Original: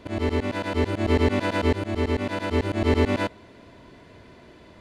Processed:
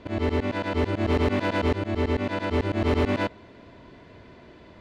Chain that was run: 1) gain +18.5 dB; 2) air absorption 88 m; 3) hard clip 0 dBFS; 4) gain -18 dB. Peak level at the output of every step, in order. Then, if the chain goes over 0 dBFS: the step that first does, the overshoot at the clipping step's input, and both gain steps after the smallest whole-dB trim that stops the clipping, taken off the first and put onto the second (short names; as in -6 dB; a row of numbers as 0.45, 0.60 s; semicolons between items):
+9.5, +9.0, 0.0, -18.0 dBFS; step 1, 9.0 dB; step 1 +9.5 dB, step 4 -9 dB